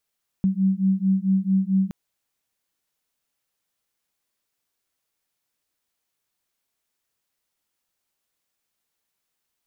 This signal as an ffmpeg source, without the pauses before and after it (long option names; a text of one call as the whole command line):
ffmpeg -f lavfi -i "aevalsrc='0.0891*(sin(2*PI*189*t)+sin(2*PI*193.5*t))':duration=1.47:sample_rate=44100" out.wav